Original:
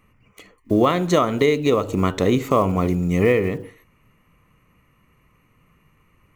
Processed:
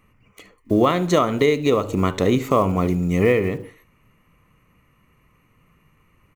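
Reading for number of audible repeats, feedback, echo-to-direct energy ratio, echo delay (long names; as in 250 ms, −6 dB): 1, repeats not evenly spaced, −20.5 dB, 72 ms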